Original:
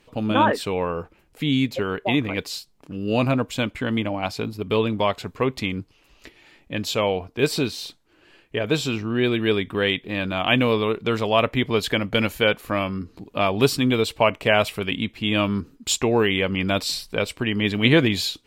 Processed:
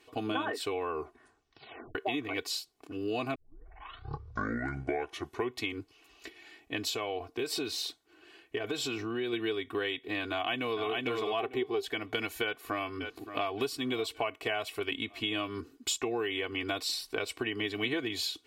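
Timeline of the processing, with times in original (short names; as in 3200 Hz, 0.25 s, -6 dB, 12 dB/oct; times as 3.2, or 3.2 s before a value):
0.89 tape stop 1.06 s
3.35 tape start 2.26 s
6.89–9.33 compressor 3:1, threshold -25 dBFS
10.31–10.87 echo throw 0.45 s, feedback 15%, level -3.5 dB
11.38–11.86 small resonant body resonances 390/770 Hz, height 16 dB -> 13 dB, ringing for 60 ms
12.43–13.49 echo throw 0.57 s, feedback 40%, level -17.5 dB
whole clip: HPF 270 Hz 6 dB/oct; comb 2.7 ms, depth 93%; compressor 6:1, threshold -26 dBFS; gain -4 dB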